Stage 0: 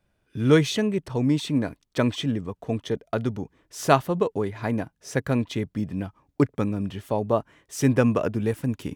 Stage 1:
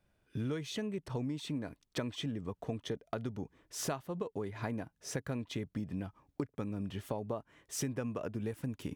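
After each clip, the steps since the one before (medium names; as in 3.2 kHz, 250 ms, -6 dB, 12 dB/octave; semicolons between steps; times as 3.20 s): compression 12:1, threshold -30 dBFS, peak gain reduction 19 dB; trim -3.5 dB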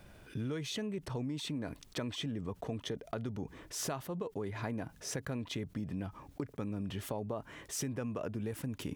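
level flattener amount 50%; trim -3 dB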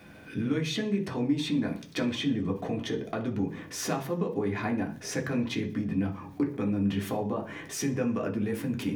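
reverberation RT60 0.45 s, pre-delay 3 ms, DRR 0 dB; trim +2 dB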